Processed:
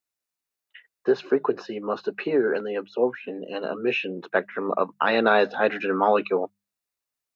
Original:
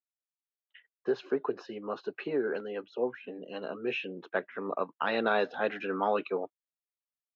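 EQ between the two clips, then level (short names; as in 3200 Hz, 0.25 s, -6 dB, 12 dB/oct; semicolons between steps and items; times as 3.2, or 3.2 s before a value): notches 50/100/150/200 Hz; notch 3200 Hz, Q 11; +8.5 dB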